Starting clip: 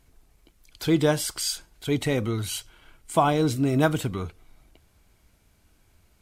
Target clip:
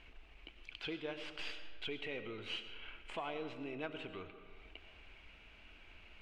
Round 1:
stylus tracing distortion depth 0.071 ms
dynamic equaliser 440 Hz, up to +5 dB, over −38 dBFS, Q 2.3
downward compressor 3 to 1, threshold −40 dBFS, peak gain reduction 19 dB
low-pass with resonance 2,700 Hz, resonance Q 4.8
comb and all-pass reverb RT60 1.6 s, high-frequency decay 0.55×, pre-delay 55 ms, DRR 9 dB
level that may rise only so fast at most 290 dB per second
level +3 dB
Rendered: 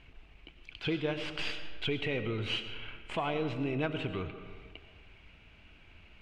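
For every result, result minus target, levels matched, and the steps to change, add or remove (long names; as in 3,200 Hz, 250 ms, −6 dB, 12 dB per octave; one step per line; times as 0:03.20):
125 Hz band +8.5 dB; downward compressor: peak gain reduction −8 dB
add after low-pass with resonance: parametric band 120 Hz −12 dB 1.6 octaves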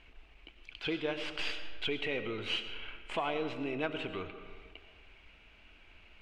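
downward compressor: peak gain reduction −8 dB
change: downward compressor 3 to 1, threshold −52 dBFS, peak gain reduction 27 dB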